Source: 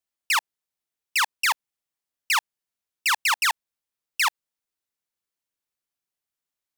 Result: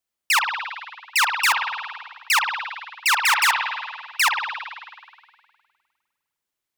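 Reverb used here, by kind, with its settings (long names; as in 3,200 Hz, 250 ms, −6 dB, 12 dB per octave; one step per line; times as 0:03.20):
spring reverb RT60 1.8 s, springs 50 ms, chirp 50 ms, DRR 2 dB
level +3 dB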